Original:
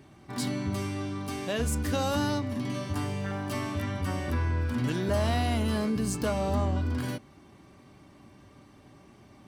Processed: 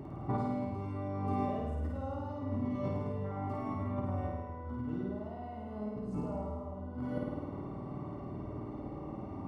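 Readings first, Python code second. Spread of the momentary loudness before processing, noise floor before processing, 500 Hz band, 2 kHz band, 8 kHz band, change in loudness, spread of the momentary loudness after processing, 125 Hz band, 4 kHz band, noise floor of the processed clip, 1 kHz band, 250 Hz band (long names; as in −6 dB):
6 LU, −55 dBFS, −6.5 dB, −17.5 dB, below −30 dB, −8.0 dB, 8 LU, −7.0 dB, below −25 dB, −44 dBFS, −5.0 dB, −6.0 dB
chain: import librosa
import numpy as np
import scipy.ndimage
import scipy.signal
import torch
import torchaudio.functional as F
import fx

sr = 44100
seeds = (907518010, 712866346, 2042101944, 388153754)

p1 = fx.over_compress(x, sr, threshold_db=-39.0, ratio=-1.0)
p2 = scipy.signal.savgol_filter(p1, 65, 4, mode='constant')
y = p2 + fx.room_flutter(p2, sr, wall_m=9.0, rt60_s=1.3, dry=0)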